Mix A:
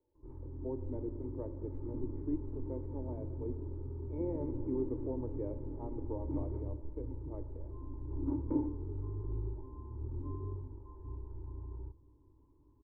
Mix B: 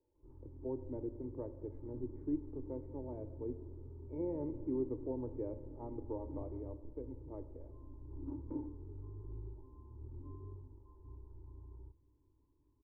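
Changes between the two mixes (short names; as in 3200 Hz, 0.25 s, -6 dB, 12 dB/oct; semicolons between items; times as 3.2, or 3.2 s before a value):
background -8.5 dB; master: add air absorption 260 m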